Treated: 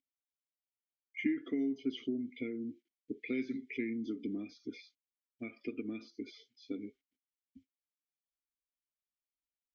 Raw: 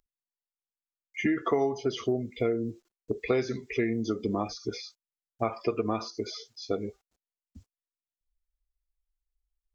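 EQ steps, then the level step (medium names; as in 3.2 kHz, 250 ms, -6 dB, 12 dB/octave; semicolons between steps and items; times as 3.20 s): vowel filter i; band-stop 1.1 kHz, Q 7.8; +2.5 dB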